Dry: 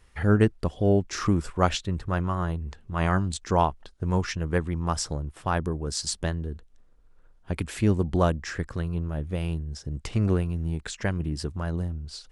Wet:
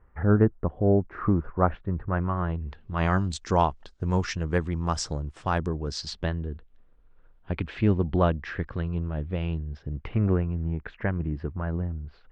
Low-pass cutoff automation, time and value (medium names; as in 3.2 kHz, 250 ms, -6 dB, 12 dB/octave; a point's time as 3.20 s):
low-pass 24 dB/octave
1.81 s 1.5 kHz
2.56 s 3 kHz
3.23 s 7.3 kHz
5.68 s 7.3 kHz
6.35 s 3.5 kHz
9.57 s 3.5 kHz
10.33 s 2.2 kHz